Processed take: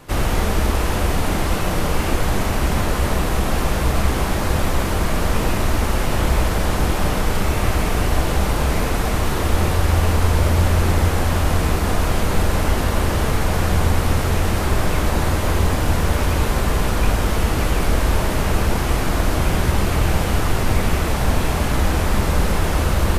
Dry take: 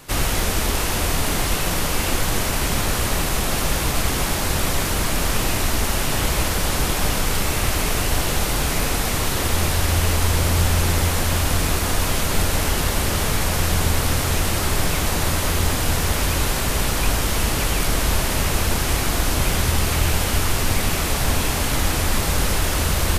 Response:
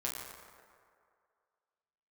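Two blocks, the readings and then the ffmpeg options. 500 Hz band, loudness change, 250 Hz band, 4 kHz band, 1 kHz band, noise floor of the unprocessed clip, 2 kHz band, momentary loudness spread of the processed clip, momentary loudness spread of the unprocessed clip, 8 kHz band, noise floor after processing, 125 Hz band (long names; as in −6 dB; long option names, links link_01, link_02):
+3.0 dB, +0.5 dB, +3.5 dB, −4.5 dB, +2.0 dB, −23 dBFS, −1.0 dB, 3 LU, 2 LU, −7.0 dB, −21 dBFS, +3.5 dB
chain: -filter_complex "[0:a]highshelf=frequency=2300:gain=-11,asplit=2[link_01][link_02];[1:a]atrim=start_sample=2205[link_03];[link_02][link_03]afir=irnorm=-1:irlink=0,volume=-5.5dB[link_04];[link_01][link_04]amix=inputs=2:normalize=0"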